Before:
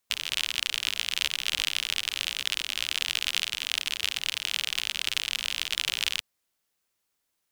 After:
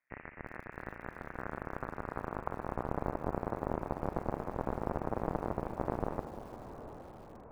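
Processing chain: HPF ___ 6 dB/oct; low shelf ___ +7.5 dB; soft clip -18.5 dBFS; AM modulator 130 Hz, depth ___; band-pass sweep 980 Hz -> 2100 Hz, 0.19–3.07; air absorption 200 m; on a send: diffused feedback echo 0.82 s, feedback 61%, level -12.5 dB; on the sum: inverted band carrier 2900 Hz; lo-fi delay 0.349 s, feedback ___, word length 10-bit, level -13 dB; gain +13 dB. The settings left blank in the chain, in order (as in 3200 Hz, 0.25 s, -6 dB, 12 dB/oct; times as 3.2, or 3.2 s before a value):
190 Hz, 240 Hz, 75%, 35%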